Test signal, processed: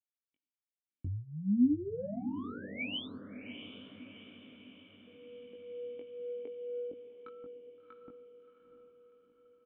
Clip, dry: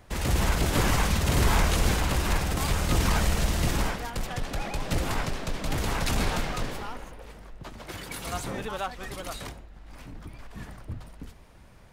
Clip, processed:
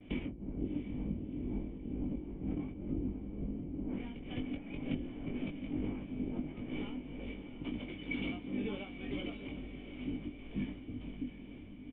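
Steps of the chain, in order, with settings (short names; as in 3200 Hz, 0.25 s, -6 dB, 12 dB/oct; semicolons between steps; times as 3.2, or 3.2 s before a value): treble ducked by the level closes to 570 Hz, closed at -21 dBFS; gate with hold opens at -49 dBFS; compressor 6:1, threshold -36 dBFS; tremolo triangle 2.1 Hz, depth 80%; overdrive pedal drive 13 dB, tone 1500 Hz, clips at -21 dBFS; vocal tract filter i; doubler 20 ms -4 dB; diffused feedback echo 0.7 s, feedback 55%, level -10 dB; gain +14.5 dB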